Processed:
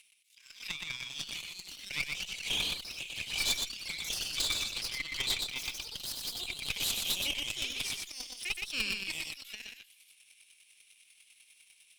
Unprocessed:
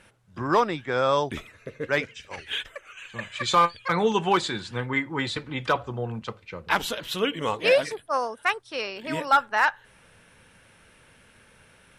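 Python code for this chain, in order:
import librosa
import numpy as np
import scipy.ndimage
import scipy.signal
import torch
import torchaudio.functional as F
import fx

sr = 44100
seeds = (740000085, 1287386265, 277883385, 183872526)

y = np.where(x < 0.0, 10.0 ** (-3.0 / 20.0) * x, x)
y = fx.high_shelf(y, sr, hz=6200.0, db=7.0)
y = fx.over_compress(y, sr, threshold_db=-26.0, ratio=-0.5)
y = scipy.signal.sosfilt(scipy.signal.cheby1(5, 1.0, 2300.0, 'highpass', fs=sr, output='sos'), y)
y = fx.leveller(y, sr, passes=1)
y = fx.chopper(y, sr, hz=10.0, depth_pct=65, duty_pct=15)
y = fx.tube_stage(y, sr, drive_db=31.0, bias=0.7)
y = y + 10.0 ** (-4.0 / 20.0) * np.pad(y, (int(120 * sr / 1000.0), 0))[:len(y)]
y = fx.echo_pitch(y, sr, ms=636, semitones=4, count=2, db_per_echo=-6.0)
y = fx.pre_swell(y, sr, db_per_s=130.0)
y = F.gain(torch.from_numpy(y), 5.5).numpy()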